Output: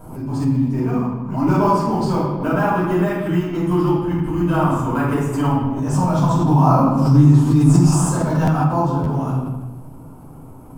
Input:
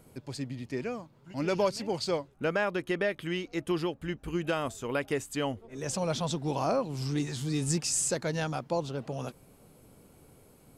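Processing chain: dynamic bell 560 Hz, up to -6 dB, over -43 dBFS, Q 1.1; in parallel at -11 dB: decimation with a swept rate 15×, swing 100% 0.55 Hz; on the sum: ten-band graphic EQ 125 Hz +4 dB, 250 Hz +5 dB, 500 Hz -6 dB, 1 kHz +12 dB, 2 kHz -10 dB, 4 kHz -11 dB, 8 kHz -4 dB; on a send: bucket-brigade echo 155 ms, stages 4096, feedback 36%, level -11.5 dB; on the sum: simulated room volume 280 m³, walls mixed, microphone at 5.2 m; buffer glitch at 8.44/9.03 s, samples 512, times 2; swell ahead of each attack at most 73 dB/s; trim -3 dB

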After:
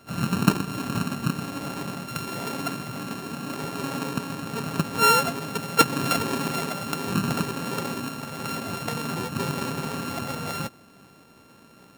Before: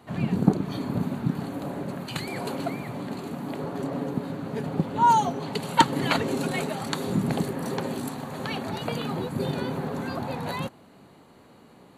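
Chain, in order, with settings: sorted samples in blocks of 32 samples

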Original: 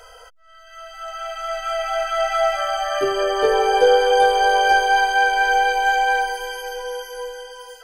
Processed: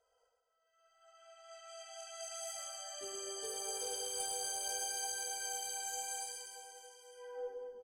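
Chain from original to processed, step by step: level-controlled noise filter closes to 1.2 kHz, open at -14 dBFS; FFT filter 230 Hz 0 dB, 1.5 kHz -25 dB, 5.6 kHz -19 dB, 8.1 kHz +5 dB; band-pass sweep 5.4 kHz -> 220 Hz, 7.08–7.60 s; valve stage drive 39 dB, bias 0.25; flange 0.78 Hz, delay 8.9 ms, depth 4 ms, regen -74%; reverse bouncing-ball echo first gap 110 ms, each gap 1.25×, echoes 5; trim +14 dB

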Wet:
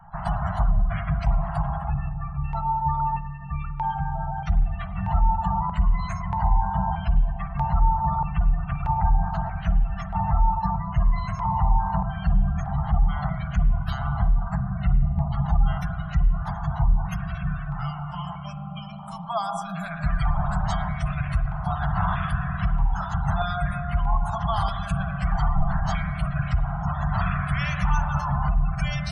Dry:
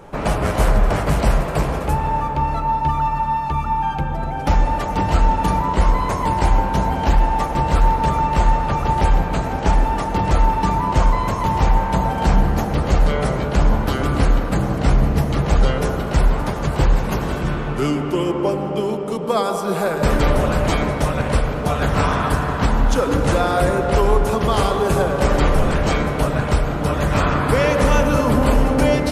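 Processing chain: Chebyshev band-stop 190–670 Hz, order 5; feedback comb 270 Hz, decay 0.39 s, harmonics all, mix 40%; spectral gate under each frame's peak -25 dB strong; LFO notch square 0.79 Hz 880–2400 Hz; spring tank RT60 1.4 s, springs 44/49 ms, chirp 75 ms, DRR 12.5 dB

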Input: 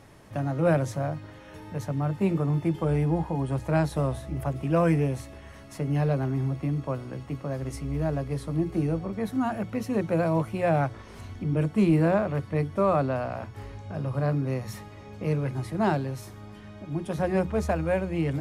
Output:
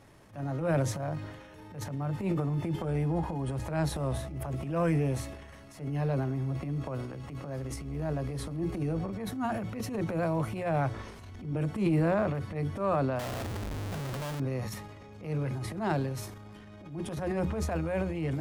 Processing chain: transient shaper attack -10 dB, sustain +8 dB; 13.19–14.40 s: Schmitt trigger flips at -41 dBFS; trim -4.5 dB

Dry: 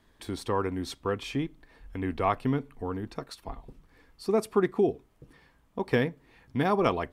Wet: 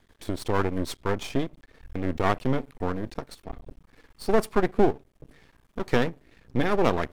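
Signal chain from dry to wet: rotary cabinet horn 6.3 Hz, later 0.65 Hz, at 1.27 s; half-wave rectifier; trim +8.5 dB

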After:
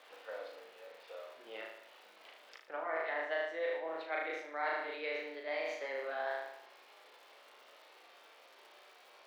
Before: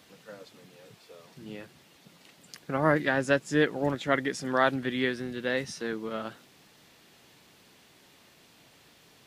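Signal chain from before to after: pitch bend over the whole clip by +5 st starting unshifted; distance through air 310 m; on a send: flutter echo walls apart 6.4 m, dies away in 0.75 s; on the sum: crackle 420 per s -58 dBFS; reverse; compression 5:1, threshold -36 dBFS, peak gain reduction 16 dB; reverse; high-pass 490 Hz 24 dB/octave; trim +3 dB

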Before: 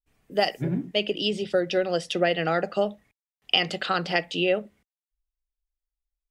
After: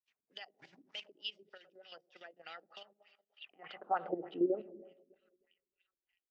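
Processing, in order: 0.51–1.09 s: one-bit delta coder 64 kbps, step -39.5 dBFS; compression 16:1, threshold -31 dBFS, peak gain reduction 16 dB; dynamic bell 890 Hz, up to +5 dB, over -54 dBFS, Q 2.6; two-band feedback delay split 2.2 kHz, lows 107 ms, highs 659 ms, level -15 dB; reverberation RT60 1.3 s, pre-delay 113 ms, DRR 17.5 dB; LFO low-pass sine 3.3 Hz 270–3300 Hz; level held to a coarse grid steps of 11 dB; band-pass sweep 5.7 kHz -> 360 Hz, 3.14–4.24 s; trim +7 dB

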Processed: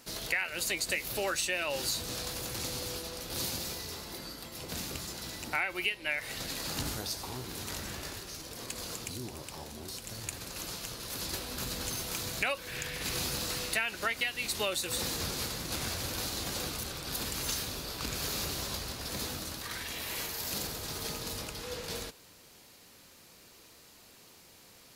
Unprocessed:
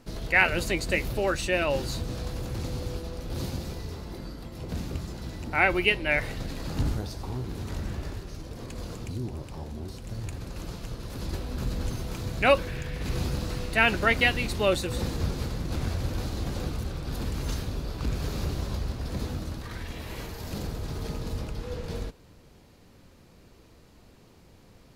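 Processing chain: tilt EQ +3.5 dB/octave; compression 12:1, threshold -28 dBFS, peak gain reduction 16.5 dB

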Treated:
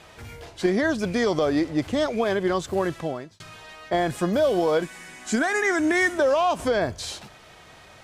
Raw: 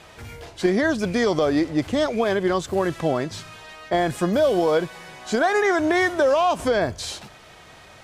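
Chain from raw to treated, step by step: 2.85–3.40 s: fade out; 4.82–6.18 s: graphic EQ 125/250/500/1000/2000/4000/8000 Hz -9/+9/-8/-4/+5/-5/+9 dB; trim -2 dB

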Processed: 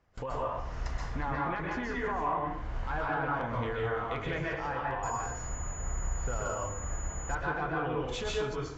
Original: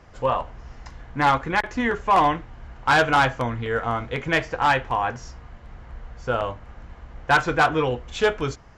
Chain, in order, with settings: gate with hold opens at -34 dBFS; low-pass that closes with the level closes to 1.5 kHz, closed at -15 dBFS; compression 6:1, threshold -33 dBFS, peak gain reduction 17 dB; peak limiter -28.5 dBFS, peak gain reduction 11 dB; plate-style reverb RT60 0.63 s, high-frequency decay 0.75×, pre-delay 115 ms, DRR -3.5 dB; 5.03–7.35 s: class-D stage that switches slowly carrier 6.9 kHz

